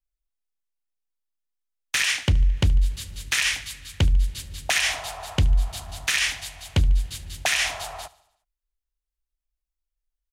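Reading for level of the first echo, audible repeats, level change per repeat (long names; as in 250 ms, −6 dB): −21.0 dB, 3, −4.5 dB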